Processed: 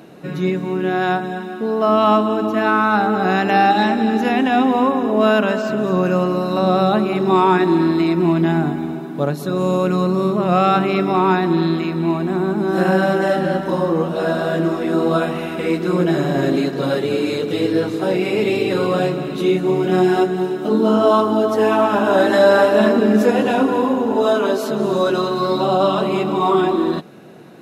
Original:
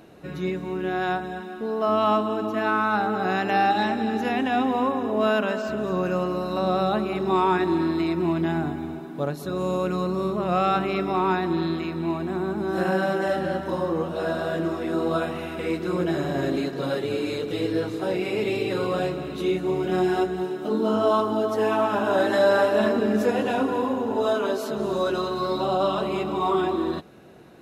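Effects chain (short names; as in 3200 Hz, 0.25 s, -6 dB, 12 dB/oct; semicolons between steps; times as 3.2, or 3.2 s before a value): resonant low shelf 100 Hz -13.5 dB, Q 1.5; gain +6.5 dB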